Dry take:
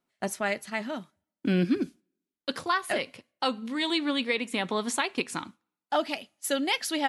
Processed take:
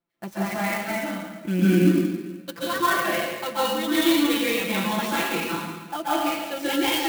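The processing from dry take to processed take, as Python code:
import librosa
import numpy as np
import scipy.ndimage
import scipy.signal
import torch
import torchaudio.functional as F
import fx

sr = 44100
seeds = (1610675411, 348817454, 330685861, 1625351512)

y = scipy.signal.sosfilt(scipy.signal.butter(2, 5300.0, 'lowpass', fs=sr, output='sos'), x)
y = fx.low_shelf(y, sr, hz=140.0, db=6.0)
y = y + 0.91 * np.pad(y, (int(5.9 * sr / 1000.0), 0))[:len(y)]
y = fx.rev_plate(y, sr, seeds[0], rt60_s=1.3, hf_ratio=0.95, predelay_ms=120, drr_db=-9.5)
y = fx.clock_jitter(y, sr, seeds[1], jitter_ms=0.029)
y = F.gain(torch.from_numpy(y), -7.0).numpy()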